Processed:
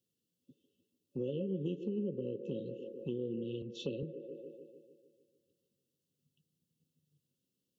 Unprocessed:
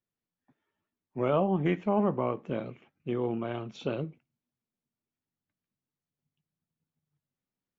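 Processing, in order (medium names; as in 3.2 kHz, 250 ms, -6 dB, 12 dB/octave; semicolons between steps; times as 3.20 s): high-pass 98 Hz; on a send: feedback echo behind a band-pass 149 ms, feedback 58%, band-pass 650 Hz, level -9 dB; on the sum: FFT band-reject 560–2600 Hz; compression 2.5:1, threshold -48 dBFS, peak gain reduction 16.5 dB; 3.62–4.03 s: three bands expanded up and down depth 70%; trim +6.5 dB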